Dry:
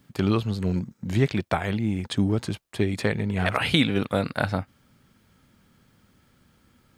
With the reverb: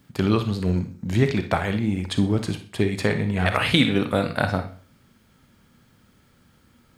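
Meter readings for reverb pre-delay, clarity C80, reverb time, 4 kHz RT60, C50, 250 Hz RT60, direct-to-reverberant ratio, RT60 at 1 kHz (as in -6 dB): 34 ms, 17.0 dB, 0.45 s, 0.40 s, 9.5 dB, 0.40 s, 7.5 dB, 0.40 s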